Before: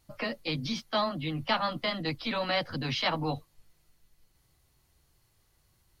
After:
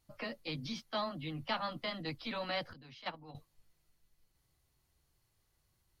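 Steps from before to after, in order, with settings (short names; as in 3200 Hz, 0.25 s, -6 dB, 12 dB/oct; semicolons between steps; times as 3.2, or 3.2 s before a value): 2.73–3.35 gate -26 dBFS, range -15 dB; gain -8 dB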